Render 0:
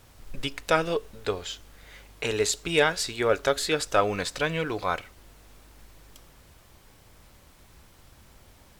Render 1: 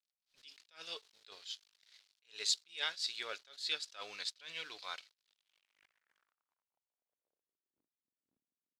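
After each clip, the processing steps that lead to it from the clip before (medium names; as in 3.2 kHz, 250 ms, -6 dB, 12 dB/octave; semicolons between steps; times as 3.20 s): crossover distortion -46.5 dBFS; band-pass sweep 4.3 kHz -> 260 Hz, 5.17–7.92 s; attacks held to a fixed rise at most 200 dB/s; trim +1.5 dB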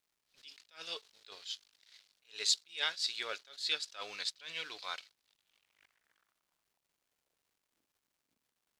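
crackle 440 per s -71 dBFS; trim +3 dB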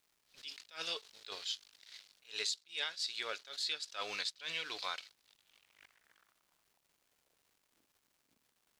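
compression 6:1, threshold -42 dBFS, peak gain reduction 16 dB; trim +6.5 dB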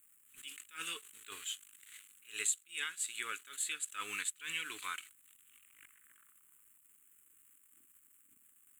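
FFT filter 100 Hz 0 dB, 150 Hz -3 dB, 290 Hz +2 dB, 440 Hz -7 dB, 620 Hz -25 dB, 1.2 kHz +1 dB, 2.9 kHz +1 dB, 5.1 kHz -23 dB, 7.7 kHz +15 dB; trim +1 dB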